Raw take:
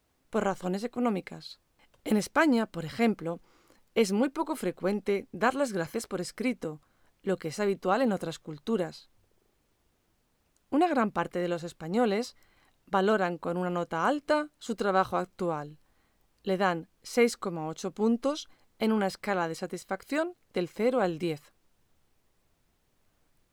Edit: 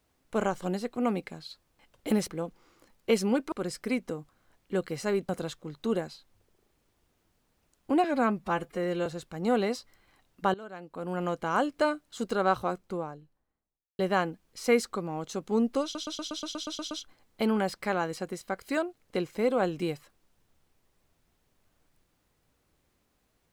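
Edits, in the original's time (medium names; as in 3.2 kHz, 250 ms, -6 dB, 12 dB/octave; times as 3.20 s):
2.28–3.16 s: delete
4.40–6.06 s: delete
7.83–8.12 s: delete
10.87–11.55 s: stretch 1.5×
13.03–13.71 s: fade in quadratic, from -20 dB
14.87–16.48 s: studio fade out
18.32 s: stutter 0.12 s, 10 plays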